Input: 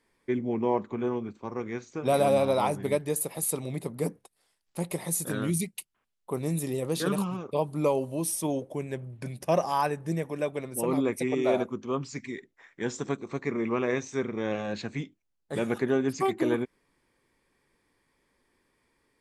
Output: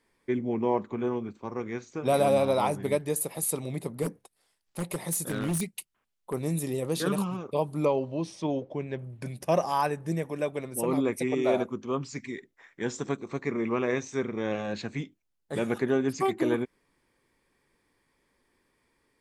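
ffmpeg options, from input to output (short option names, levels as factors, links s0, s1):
-filter_complex "[0:a]asplit=3[s0][s1][s2];[s0]afade=t=out:st=4.02:d=0.02[s3];[s1]aeval=exprs='0.075*(abs(mod(val(0)/0.075+3,4)-2)-1)':c=same,afade=t=in:st=4.02:d=0.02,afade=t=out:st=6.32:d=0.02[s4];[s2]afade=t=in:st=6.32:d=0.02[s5];[s3][s4][s5]amix=inputs=3:normalize=0,asettb=1/sr,asplit=3[s6][s7][s8];[s6]atrim=end=7.854[s9];[s7]atrim=start=7.85:end=8.99,asetpts=PTS-STARTPTS,afade=t=in:d=0.004:c=qsin,afade=t=out:st=1.136:d=0.004:c=qsin,lowpass=f=4900:w=0.5412,lowpass=f=4900:w=1.3066[s10];[s8]atrim=start=8.986[s11];[s9][s10]acrossfade=d=0.004:c1=hsin:c2=qsin[s12];[s12][s11]acrossfade=d=0.004:c1=qsin:c2=hsin"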